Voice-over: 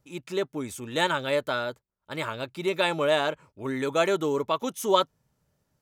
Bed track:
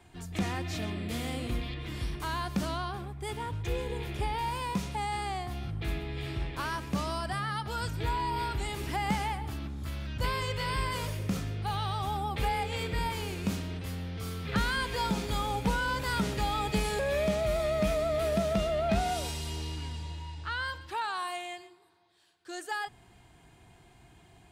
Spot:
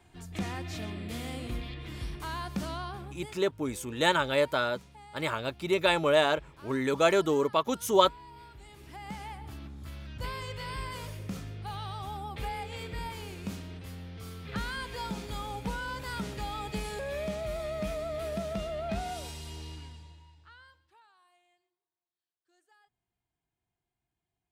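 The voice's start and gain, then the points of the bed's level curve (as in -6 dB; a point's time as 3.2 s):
3.05 s, 0.0 dB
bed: 3.16 s -3 dB
3.43 s -18 dB
8.57 s -18 dB
9.53 s -6 dB
19.74 s -6 dB
21.16 s -31 dB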